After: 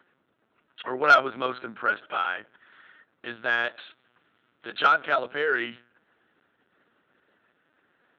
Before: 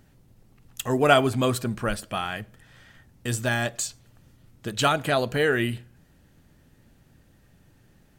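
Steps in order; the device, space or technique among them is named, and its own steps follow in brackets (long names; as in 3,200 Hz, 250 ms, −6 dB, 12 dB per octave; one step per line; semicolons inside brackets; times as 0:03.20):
0:03.50–0:04.81: parametric band 3,200 Hz +4 dB 1.3 octaves
talking toy (linear-prediction vocoder at 8 kHz pitch kept; high-pass filter 370 Hz 12 dB per octave; parametric band 1,400 Hz +11.5 dB 0.47 octaves; soft clipping −3.5 dBFS, distortion −18 dB)
level −3.5 dB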